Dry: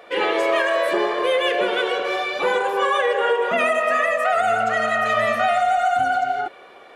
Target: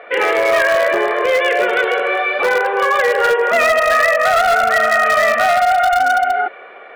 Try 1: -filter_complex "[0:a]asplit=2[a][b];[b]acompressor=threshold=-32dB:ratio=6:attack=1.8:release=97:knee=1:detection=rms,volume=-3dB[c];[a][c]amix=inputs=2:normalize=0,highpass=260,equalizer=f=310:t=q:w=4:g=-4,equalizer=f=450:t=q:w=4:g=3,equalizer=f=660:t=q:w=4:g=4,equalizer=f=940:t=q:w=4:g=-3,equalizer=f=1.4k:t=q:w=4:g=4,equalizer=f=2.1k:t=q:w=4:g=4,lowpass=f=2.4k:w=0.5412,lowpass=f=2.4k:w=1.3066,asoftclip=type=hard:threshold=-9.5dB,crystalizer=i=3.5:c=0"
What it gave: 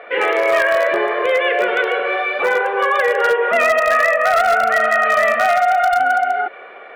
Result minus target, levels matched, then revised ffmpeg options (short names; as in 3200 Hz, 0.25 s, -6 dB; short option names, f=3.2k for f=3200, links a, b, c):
compressor: peak gain reduction +9 dB
-filter_complex "[0:a]asplit=2[a][b];[b]acompressor=threshold=-21dB:ratio=6:attack=1.8:release=97:knee=1:detection=rms,volume=-3dB[c];[a][c]amix=inputs=2:normalize=0,highpass=260,equalizer=f=310:t=q:w=4:g=-4,equalizer=f=450:t=q:w=4:g=3,equalizer=f=660:t=q:w=4:g=4,equalizer=f=940:t=q:w=4:g=-3,equalizer=f=1.4k:t=q:w=4:g=4,equalizer=f=2.1k:t=q:w=4:g=4,lowpass=f=2.4k:w=0.5412,lowpass=f=2.4k:w=1.3066,asoftclip=type=hard:threshold=-9.5dB,crystalizer=i=3.5:c=0"